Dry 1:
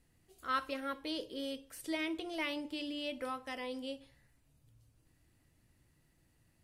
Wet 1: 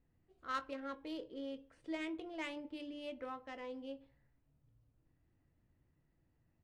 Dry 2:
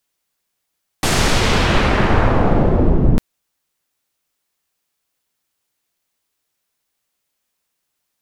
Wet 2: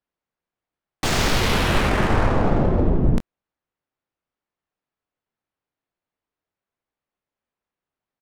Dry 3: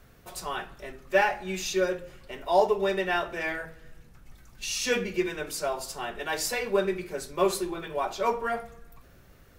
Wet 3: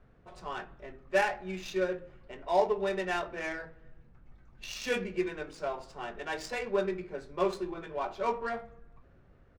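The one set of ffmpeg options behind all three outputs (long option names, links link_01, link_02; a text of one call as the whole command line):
ffmpeg -i in.wav -filter_complex "[0:a]aresample=22050,aresample=44100,adynamicsmooth=sensitivity=3:basefreq=1800,highshelf=frequency=6100:gain=4.5,asplit=2[link_01][link_02];[link_02]adelay=22,volume=-13.5dB[link_03];[link_01][link_03]amix=inputs=2:normalize=0,volume=-4.5dB" out.wav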